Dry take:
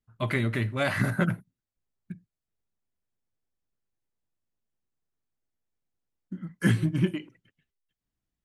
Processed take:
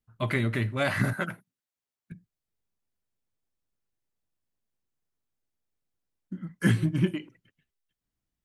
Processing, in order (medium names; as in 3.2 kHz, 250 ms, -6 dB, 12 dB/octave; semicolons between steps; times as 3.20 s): 1.13–2.12 s: high-pass 620 Hz 6 dB/octave